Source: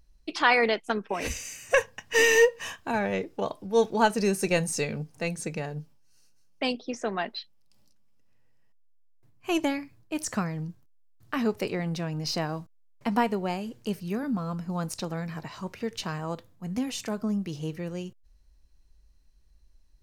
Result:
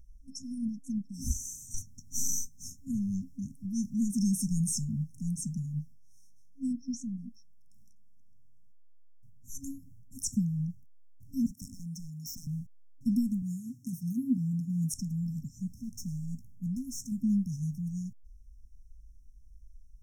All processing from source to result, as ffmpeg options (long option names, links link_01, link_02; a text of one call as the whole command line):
ffmpeg -i in.wav -filter_complex "[0:a]asettb=1/sr,asplit=3[link_01][link_02][link_03];[link_01]atrim=end=11.464[link_04];[link_02]atrim=start=11.46:end=12.47,asetpts=PTS-STARTPTS,afade=type=in:duration=0.004:curve=qsin,afade=type=out:start_time=1.006:duration=0.004:curve=qsin,highpass=290,acrossover=split=7100[link_05][link_06];[link_06]acompressor=threshold=-48dB:ratio=4:attack=1:release=60[link_07];[link_05][link_07]amix=inputs=2:normalize=0,aeval=exprs='0.0299*(abs(mod(val(0)/0.0299+3,4)-2)-1)':channel_layout=same[link_08];[link_03]atrim=start=12.466[link_09];[link_04][link_08]acrossfade=duration=0.004:curve1=hsin:curve2=qsin[link_10];[link_10][link_09]acrossfade=duration=0.004:curve1=qsin:curve2=hsin,asettb=1/sr,asplit=3[link_11][link_12][link_13];[link_11]atrim=end=13.424[link_14];[link_12]atrim=start=13.42:end=14.94,asetpts=PTS-STARTPTS,afade=type=in:duration=0.004:curve=qsin,afade=type=out:start_time=1.516:duration=0.004:curve=qsin,highpass=130,aecho=1:1:7.3:0.7,atrim=end_sample=67032[link_15];[link_13]atrim=start=14.936[link_16];[link_14][link_15]acrossfade=duration=0.004:curve1=hsin:curve2=qsin[link_17];[link_17][link_16]acrossfade=duration=0.004:curve1=qsin:curve2=hsin,asettb=1/sr,asplit=3[link_18][link_19][link_20];[link_18]atrim=end=15.684[link_21];[link_19]atrim=start=15.68:end=17.12,asetpts=PTS-STARTPTS,afade=type=in:duration=0.004:curve=qsin,afade=type=out:start_time=1.436:duration=0.004:curve=qsin,volume=33.5dB,asoftclip=hard,volume=-33.5dB,asplit=2[link_22][link_23];[link_23]adelay=17,volume=-12dB[link_24];[link_22][link_24]amix=inputs=2:normalize=0,atrim=end_sample=63504[link_25];[link_20]atrim=start=17.116[link_26];[link_21][link_25]acrossfade=duration=0.004:curve1=hsin:curve2=qsin[link_27];[link_27][link_26]acrossfade=duration=0.004:curve1=qsin:curve2=hsin,lowshelf=frequency=91:gain=8.5,afftfilt=real='re*(1-between(b*sr/4096,270,5300))':imag='im*(1-between(b*sr/4096,270,5300))':win_size=4096:overlap=0.75" out.wav